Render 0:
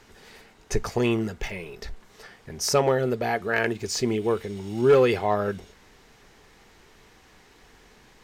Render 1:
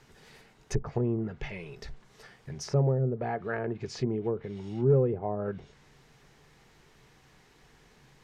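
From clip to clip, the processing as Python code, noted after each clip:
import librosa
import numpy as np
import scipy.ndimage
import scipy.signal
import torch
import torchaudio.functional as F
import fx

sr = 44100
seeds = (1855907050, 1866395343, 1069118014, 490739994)

y = fx.peak_eq(x, sr, hz=140.0, db=13.5, octaves=0.34)
y = fx.env_lowpass_down(y, sr, base_hz=530.0, full_db=-18.0)
y = y * 10.0 ** (-6.0 / 20.0)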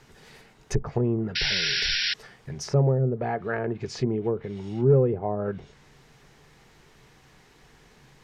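y = fx.spec_paint(x, sr, seeds[0], shape='noise', start_s=1.35, length_s=0.79, low_hz=1400.0, high_hz=5700.0, level_db=-30.0)
y = y * 10.0 ** (4.0 / 20.0)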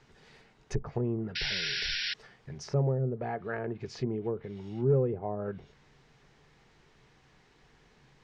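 y = scipy.signal.sosfilt(scipy.signal.butter(2, 6000.0, 'lowpass', fs=sr, output='sos'), x)
y = y * 10.0 ** (-6.5 / 20.0)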